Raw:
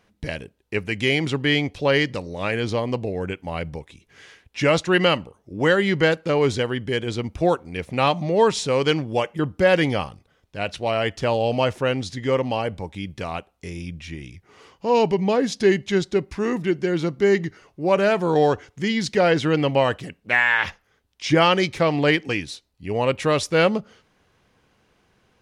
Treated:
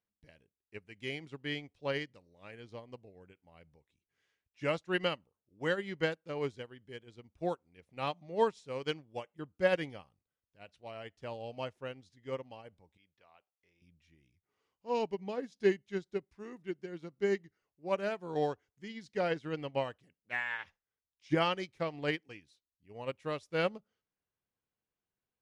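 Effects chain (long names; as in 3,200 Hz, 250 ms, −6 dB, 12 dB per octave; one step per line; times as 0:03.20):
0:12.97–0:13.82: three-way crossover with the lows and the highs turned down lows −14 dB, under 490 Hz, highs −21 dB, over 4,900 Hz
expander for the loud parts 2.5 to 1, over −28 dBFS
level −9 dB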